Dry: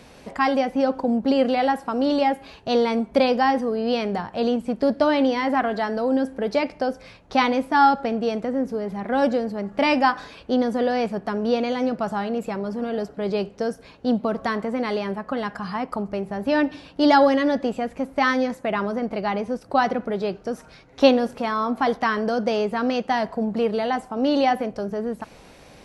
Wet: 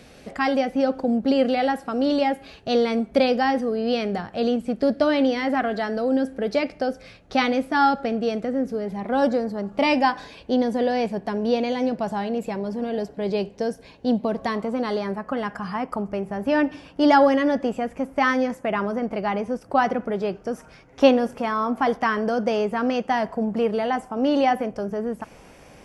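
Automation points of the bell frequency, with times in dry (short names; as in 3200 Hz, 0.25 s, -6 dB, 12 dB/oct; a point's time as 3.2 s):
bell -11.5 dB 0.27 oct
8.82 s 970 Hz
9.4 s 3300 Hz
9.94 s 1300 Hz
14.42 s 1300 Hz
15.32 s 4000 Hz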